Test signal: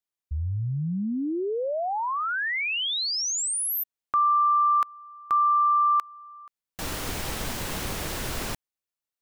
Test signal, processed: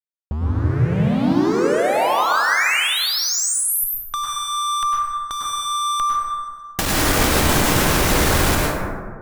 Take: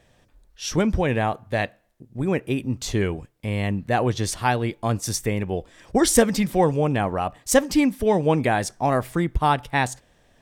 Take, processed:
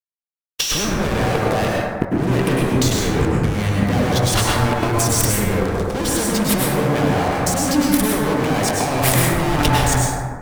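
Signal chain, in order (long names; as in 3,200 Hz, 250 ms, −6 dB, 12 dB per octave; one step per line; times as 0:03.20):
fuzz pedal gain 37 dB, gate −43 dBFS
downward expander −34 dBFS
compressor whose output falls as the input rises −23 dBFS, ratio −1
dense smooth reverb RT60 1.9 s, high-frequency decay 0.3×, pre-delay 90 ms, DRR −4 dB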